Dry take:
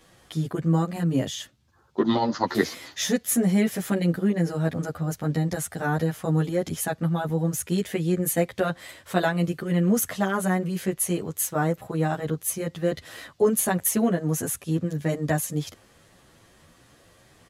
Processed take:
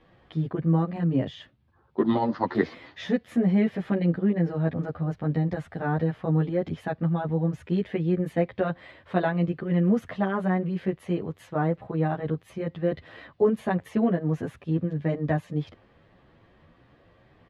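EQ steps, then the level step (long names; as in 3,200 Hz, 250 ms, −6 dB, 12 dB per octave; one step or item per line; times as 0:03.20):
low-pass filter 9,400 Hz 12 dB per octave
high-frequency loss of the air 400 metres
parametric band 1,400 Hz −3.5 dB 0.23 octaves
0.0 dB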